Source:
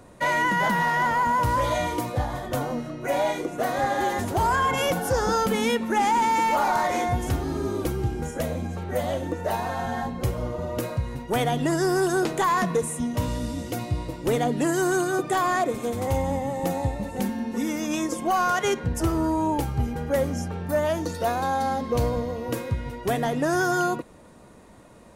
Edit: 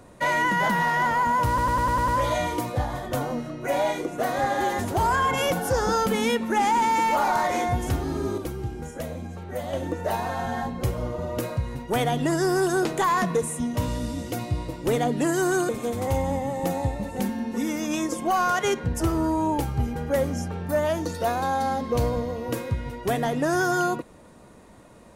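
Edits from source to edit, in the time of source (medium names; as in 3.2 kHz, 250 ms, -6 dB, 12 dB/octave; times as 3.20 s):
1.48 s: stutter 0.10 s, 7 plays
7.78–9.13 s: gain -5 dB
15.09–15.69 s: delete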